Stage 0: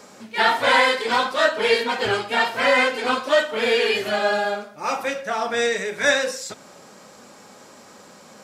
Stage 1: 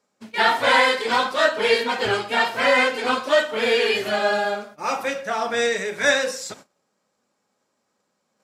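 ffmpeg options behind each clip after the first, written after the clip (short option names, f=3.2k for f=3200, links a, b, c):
-af "agate=range=-27dB:threshold=-41dB:ratio=16:detection=peak"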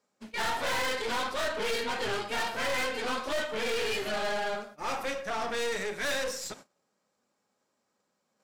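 -af "aeval=exprs='(tanh(20*val(0)+0.55)-tanh(0.55))/20':c=same,volume=-2.5dB"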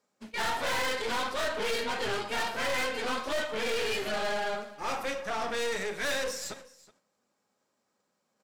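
-af "aecho=1:1:372:0.1"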